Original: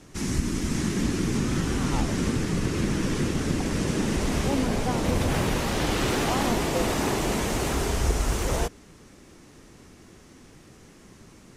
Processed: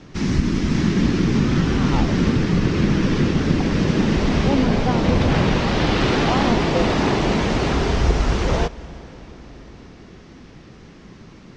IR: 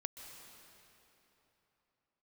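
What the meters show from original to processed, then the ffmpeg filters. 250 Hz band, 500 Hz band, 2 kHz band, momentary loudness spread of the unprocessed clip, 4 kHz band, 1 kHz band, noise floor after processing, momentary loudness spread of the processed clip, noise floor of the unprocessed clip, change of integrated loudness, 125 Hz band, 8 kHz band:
+8.0 dB, +6.5 dB, +6.0 dB, 2 LU, +5.5 dB, +6.0 dB, -44 dBFS, 3 LU, -51 dBFS, +7.0 dB, +8.0 dB, -4.5 dB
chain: -filter_complex "[0:a]lowpass=f=5.1k:w=0.5412,lowpass=f=5.1k:w=1.3066,equalizer=f=170:w=1.6:g=3.5,asplit=2[a][b];[1:a]atrim=start_sample=2205,asetrate=28665,aresample=44100[c];[b][c]afir=irnorm=-1:irlink=0,volume=-12.5dB[d];[a][d]amix=inputs=2:normalize=0,volume=4.5dB"

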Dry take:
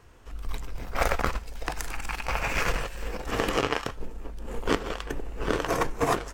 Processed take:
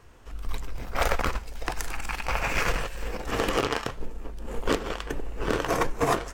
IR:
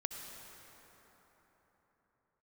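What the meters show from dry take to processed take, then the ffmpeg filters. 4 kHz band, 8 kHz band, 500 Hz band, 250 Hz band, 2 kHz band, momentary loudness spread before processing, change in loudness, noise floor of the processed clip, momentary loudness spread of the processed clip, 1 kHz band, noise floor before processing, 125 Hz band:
+1.0 dB, +1.0 dB, +0.5 dB, +0.5 dB, +0.5 dB, 13 LU, +0.5 dB, -41 dBFS, 13 LU, +0.5 dB, -42 dBFS, +0.5 dB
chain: -af "aeval=exprs='0.251*(abs(mod(val(0)/0.251+3,4)-2)-1)':c=same,flanger=delay=1.7:depth=7.5:regen=87:speed=1.7:shape=sinusoidal,volume=5.5dB"

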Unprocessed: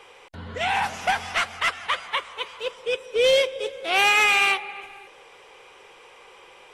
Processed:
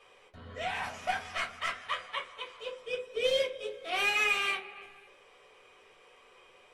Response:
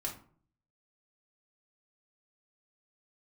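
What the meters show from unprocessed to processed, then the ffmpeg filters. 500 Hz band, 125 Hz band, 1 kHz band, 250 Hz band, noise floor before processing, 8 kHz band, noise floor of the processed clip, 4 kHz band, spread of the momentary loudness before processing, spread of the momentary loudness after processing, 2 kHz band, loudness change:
-9.5 dB, n/a, -11.0 dB, -9.5 dB, -50 dBFS, -11.5 dB, -60 dBFS, -9.5 dB, 16 LU, 16 LU, -9.5 dB, -10.0 dB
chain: -filter_complex "[1:a]atrim=start_sample=2205,asetrate=79380,aresample=44100[a];[0:a][a]afir=irnorm=-1:irlink=0,volume=-6dB"

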